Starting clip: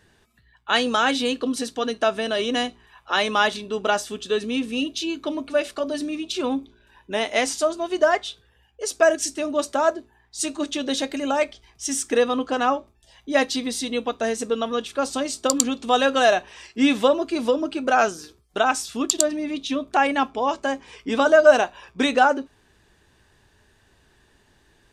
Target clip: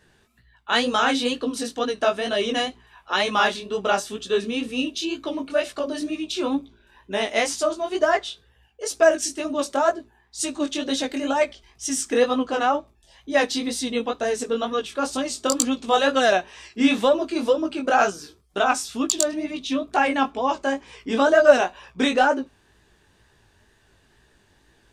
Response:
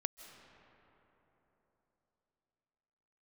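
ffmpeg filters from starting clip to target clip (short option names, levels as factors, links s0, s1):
-filter_complex "[0:a]asplit=2[s0][s1];[s1]asoftclip=type=hard:threshold=0.299,volume=0.376[s2];[s0][s2]amix=inputs=2:normalize=0,flanger=delay=15:depth=7.4:speed=2.1"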